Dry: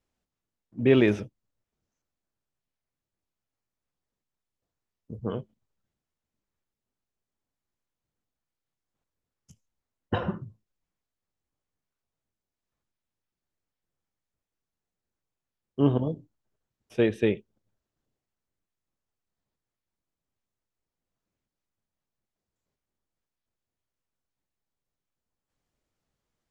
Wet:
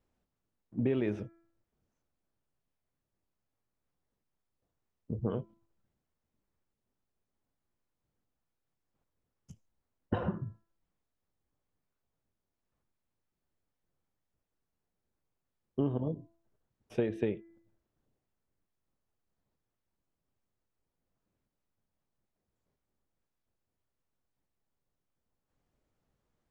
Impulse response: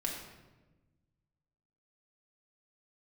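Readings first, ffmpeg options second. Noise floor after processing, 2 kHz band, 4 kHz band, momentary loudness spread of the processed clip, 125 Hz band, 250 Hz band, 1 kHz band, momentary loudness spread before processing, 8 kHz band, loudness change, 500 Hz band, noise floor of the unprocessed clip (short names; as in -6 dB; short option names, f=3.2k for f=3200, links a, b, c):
under -85 dBFS, -13.5 dB, -15.5 dB, 12 LU, -6.0 dB, -8.0 dB, -7.0 dB, 20 LU, n/a, -9.0 dB, -9.0 dB, under -85 dBFS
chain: -af "highshelf=f=2k:g=-10,bandreject=f=334.8:t=h:w=4,bandreject=f=669.6:t=h:w=4,bandreject=f=1.0044k:t=h:w=4,bandreject=f=1.3392k:t=h:w=4,bandreject=f=1.674k:t=h:w=4,bandreject=f=2.0088k:t=h:w=4,bandreject=f=2.3436k:t=h:w=4,acompressor=threshold=-33dB:ratio=5,volume=4dB"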